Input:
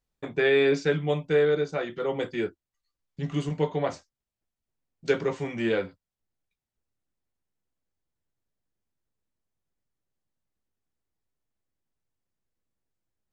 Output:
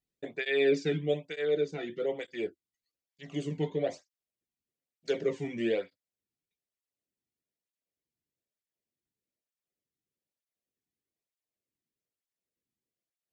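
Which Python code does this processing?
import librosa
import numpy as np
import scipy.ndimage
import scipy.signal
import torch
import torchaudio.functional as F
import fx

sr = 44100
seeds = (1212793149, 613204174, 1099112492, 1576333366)

y = fx.band_shelf(x, sr, hz=1100.0, db=-10.5, octaves=1.1)
y = fx.flanger_cancel(y, sr, hz=1.1, depth_ms=1.9)
y = y * 10.0 ** (-1.5 / 20.0)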